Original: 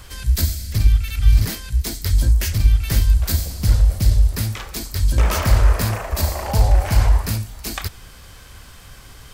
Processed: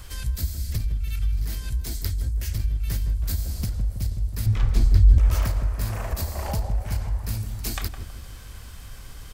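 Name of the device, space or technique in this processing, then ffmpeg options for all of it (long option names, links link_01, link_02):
ASMR close-microphone chain: -filter_complex "[0:a]lowshelf=frequency=100:gain=7,acompressor=threshold=-20dB:ratio=6,highshelf=frequency=6600:gain=4,asettb=1/sr,asplit=3[link_01][link_02][link_03];[link_01]atrim=end=4.464[link_04];[link_02]atrim=start=4.46:end=5.18,asetpts=PTS-STARTPTS,afade=type=in:duration=0.004:curve=qsin,afade=type=out:start_time=0.716:duration=0.004:curve=qsin,aemphasis=mode=reproduction:type=bsi[link_05];[link_03]atrim=start=5.176[link_06];[link_04][link_05]acrossfade=duration=0.004:curve1=hsin:curve2=qsin[link_07];[link_07][link_06]acrossfade=duration=0.004:curve1=qsin:curve2=hsin,asplit=2[link_08][link_09];[link_09]adelay=161,lowpass=frequency=850:poles=1,volume=-6dB,asplit=2[link_10][link_11];[link_11]adelay=161,lowpass=frequency=850:poles=1,volume=0.54,asplit=2[link_12][link_13];[link_13]adelay=161,lowpass=frequency=850:poles=1,volume=0.54,asplit=2[link_14][link_15];[link_15]adelay=161,lowpass=frequency=850:poles=1,volume=0.54,asplit=2[link_16][link_17];[link_17]adelay=161,lowpass=frequency=850:poles=1,volume=0.54,asplit=2[link_18][link_19];[link_19]adelay=161,lowpass=frequency=850:poles=1,volume=0.54,asplit=2[link_20][link_21];[link_21]adelay=161,lowpass=frequency=850:poles=1,volume=0.54[link_22];[link_08][link_10][link_12][link_14][link_16][link_18][link_20][link_22]amix=inputs=8:normalize=0,volume=-4.5dB"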